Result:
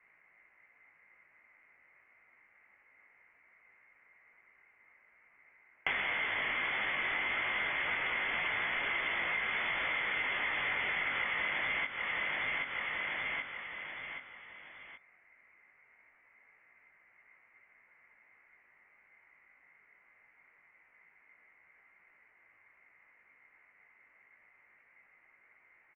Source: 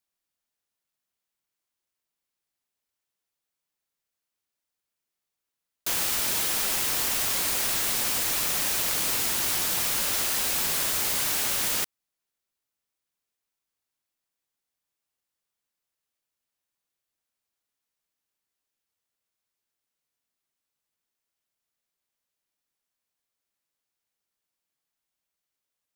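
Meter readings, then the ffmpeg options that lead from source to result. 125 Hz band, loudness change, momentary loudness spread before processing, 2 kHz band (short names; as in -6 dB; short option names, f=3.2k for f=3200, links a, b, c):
-10.5 dB, -9.5 dB, 1 LU, +4.0 dB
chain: -af "alimiter=limit=-19dB:level=0:latency=1:release=93,highpass=f=1.4k:t=q:w=9.2,aeval=exprs='0.237*sin(PI/2*5.01*val(0)/0.237)':c=same,lowpass=f=3k:t=q:w=0.5098,lowpass=f=3k:t=q:w=0.6013,lowpass=f=3k:t=q:w=0.9,lowpass=f=3k:t=q:w=2.563,afreqshift=-3500,flanger=delay=17.5:depth=2.4:speed=0.23,aecho=1:1:777|1554|2331|3108:0.266|0.109|0.0447|0.0183,acompressor=threshold=-37dB:ratio=12,volume=5.5dB"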